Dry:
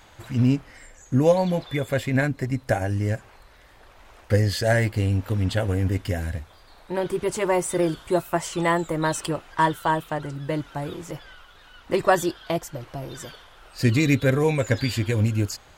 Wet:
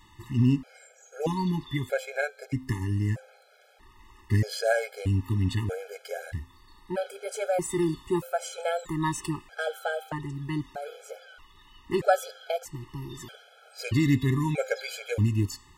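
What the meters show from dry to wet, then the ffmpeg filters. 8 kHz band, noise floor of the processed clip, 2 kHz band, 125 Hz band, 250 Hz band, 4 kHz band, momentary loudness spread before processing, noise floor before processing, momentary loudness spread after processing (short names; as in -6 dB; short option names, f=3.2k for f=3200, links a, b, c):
-5.5 dB, -57 dBFS, -5.5 dB, -4.5 dB, -4.5 dB, -5.5 dB, 12 LU, -52 dBFS, 15 LU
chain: -af "bandreject=f=260.6:t=h:w=4,bandreject=f=521.2:t=h:w=4,bandreject=f=781.8:t=h:w=4,bandreject=f=1.0424k:t=h:w=4,bandreject=f=1.303k:t=h:w=4,bandreject=f=1.5636k:t=h:w=4,bandreject=f=1.8242k:t=h:w=4,bandreject=f=2.0848k:t=h:w=4,bandreject=f=2.3454k:t=h:w=4,bandreject=f=2.606k:t=h:w=4,bandreject=f=2.8666k:t=h:w=4,bandreject=f=3.1272k:t=h:w=4,bandreject=f=3.3878k:t=h:w=4,bandreject=f=3.6484k:t=h:w=4,bandreject=f=3.909k:t=h:w=4,bandreject=f=4.1696k:t=h:w=4,bandreject=f=4.4302k:t=h:w=4,bandreject=f=4.6908k:t=h:w=4,bandreject=f=4.9514k:t=h:w=4,bandreject=f=5.212k:t=h:w=4,bandreject=f=5.4726k:t=h:w=4,bandreject=f=5.7332k:t=h:w=4,bandreject=f=5.9938k:t=h:w=4,bandreject=f=6.2544k:t=h:w=4,bandreject=f=6.515k:t=h:w=4,bandreject=f=6.7756k:t=h:w=4,bandreject=f=7.0362k:t=h:w=4,bandreject=f=7.2968k:t=h:w=4,bandreject=f=7.5574k:t=h:w=4,bandreject=f=7.818k:t=h:w=4,bandreject=f=8.0786k:t=h:w=4,bandreject=f=8.3392k:t=h:w=4,bandreject=f=8.5998k:t=h:w=4,bandreject=f=8.8604k:t=h:w=4,bandreject=f=9.121k:t=h:w=4,afftfilt=real='re*gt(sin(2*PI*0.79*pts/sr)*(1-2*mod(floor(b*sr/1024/430),2)),0)':imag='im*gt(sin(2*PI*0.79*pts/sr)*(1-2*mod(floor(b*sr/1024/430),2)),0)':win_size=1024:overlap=0.75,volume=-2dB"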